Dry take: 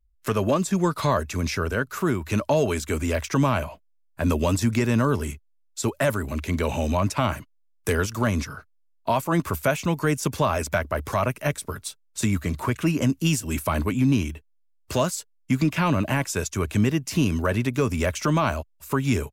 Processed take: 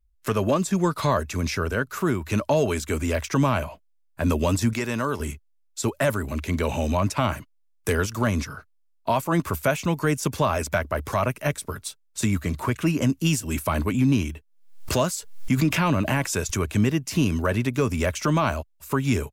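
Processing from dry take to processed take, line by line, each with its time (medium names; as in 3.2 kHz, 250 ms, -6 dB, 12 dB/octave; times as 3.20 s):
4.73–5.20 s: bass shelf 300 Hz -11 dB
13.94–16.72 s: swell ahead of each attack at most 83 dB/s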